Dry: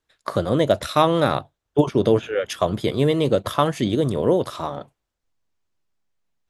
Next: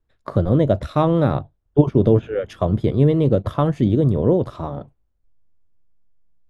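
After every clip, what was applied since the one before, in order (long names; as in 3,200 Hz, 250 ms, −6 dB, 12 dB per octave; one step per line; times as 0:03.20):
spectral tilt −4 dB per octave
level −4 dB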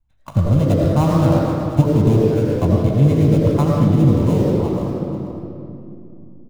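gap after every zero crossing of 0.11 ms
single-tap delay 487 ms −12.5 dB
convolution reverb RT60 2.7 s, pre-delay 70 ms, DRR −2 dB
level −10.5 dB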